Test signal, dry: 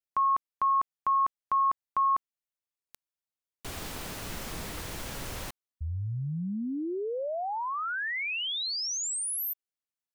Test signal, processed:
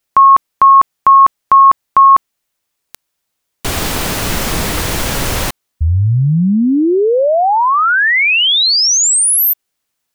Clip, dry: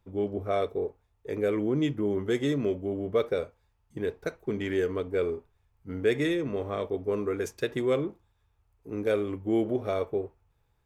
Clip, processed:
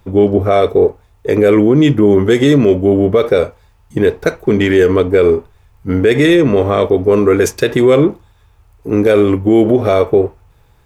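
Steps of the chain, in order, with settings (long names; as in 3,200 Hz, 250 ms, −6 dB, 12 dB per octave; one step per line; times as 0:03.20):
boost into a limiter +22 dB
level −1 dB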